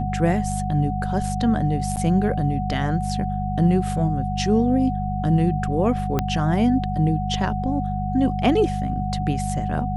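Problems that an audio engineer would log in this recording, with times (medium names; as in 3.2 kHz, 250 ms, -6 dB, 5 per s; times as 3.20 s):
hum 50 Hz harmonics 4 -26 dBFS
whine 740 Hz -28 dBFS
1.96–1.97 s: dropout 8.6 ms
6.19 s: pop -8 dBFS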